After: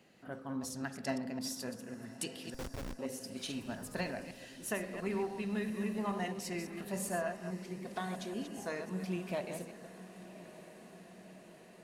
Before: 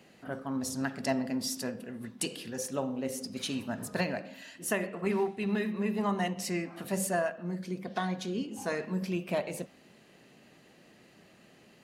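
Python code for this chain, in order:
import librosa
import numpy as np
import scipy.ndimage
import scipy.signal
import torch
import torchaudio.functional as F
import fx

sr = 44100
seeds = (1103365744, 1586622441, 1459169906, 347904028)

y = fx.reverse_delay(x, sr, ms=139, wet_db=-8)
y = fx.schmitt(y, sr, flips_db=-29.5, at=(2.54, 2.99))
y = fx.echo_diffused(y, sr, ms=1151, feedback_pct=66, wet_db=-15)
y = y * 10.0 ** (-6.5 / 20.0)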